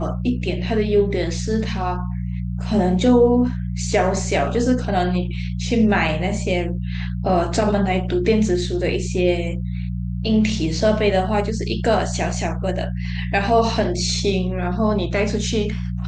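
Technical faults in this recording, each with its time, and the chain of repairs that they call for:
mains hum 60 Hz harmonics 3 −25 dBFS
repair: hum removal 60 Hz, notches 3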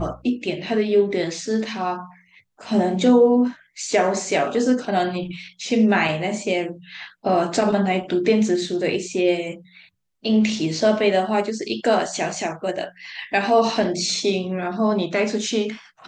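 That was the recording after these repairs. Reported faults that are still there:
none of them is left

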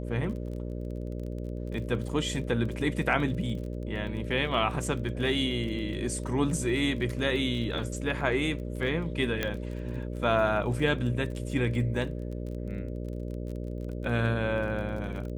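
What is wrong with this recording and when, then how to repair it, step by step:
mains buzz 60 Hz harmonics 10 −35 dBFS
surface crackle 25 per second −37 dBFS
0:09.43: click −14 dBFS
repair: click removal
hum removal 60 Hz, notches 10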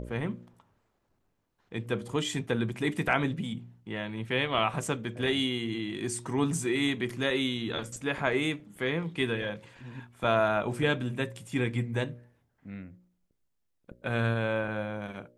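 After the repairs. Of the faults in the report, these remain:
none of them is left

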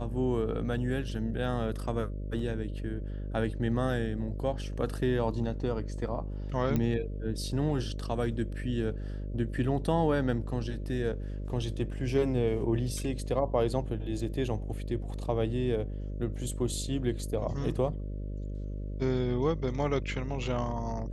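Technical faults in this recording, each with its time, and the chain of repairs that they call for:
mains buzz 50 Hz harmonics 12 −36 dBFS
0:06.76: click −17 dBFS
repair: click removal
hum removal 50 Hz, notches 12

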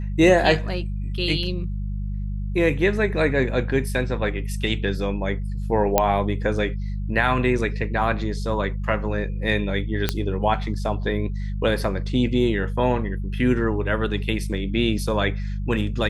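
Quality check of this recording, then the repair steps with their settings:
mains hum 50 Hz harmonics 4 −27 dBFS
0:05.98: click −2 dBFS
0:10.09: click −5 dBFS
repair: click removal
hum removal 50 Hz, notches 4

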